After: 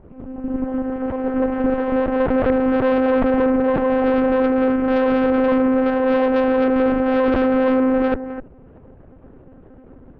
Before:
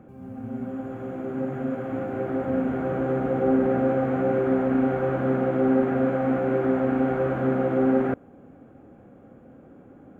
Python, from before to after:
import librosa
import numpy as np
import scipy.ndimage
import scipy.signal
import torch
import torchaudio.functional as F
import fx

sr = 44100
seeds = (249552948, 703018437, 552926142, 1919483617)

p1 = fx.low_shelf(x, sr, hz=150.0, db=7.5)
p2 = fx.over_compress(p1, sr, threshold_db=-24.0, ratio=-0.5)
p3 = p1 + (p2 * librosa.db_to_amplitude(2.0))
p4 = p3 + 10.0 ** (-9.0 / 20.0) * np.pad(p3, (int(259 * sr / 1000.0), 0))[:len(p3)]
p5 = fx.lpc_monotone(p4, sr, seeds[0], pitch_hz=260.0, order=8)
y = fx.cheby_harmonics(p5, sr, harmonics=(3, 6), levels_db=(-15, -15), full_scale_db=-4.5)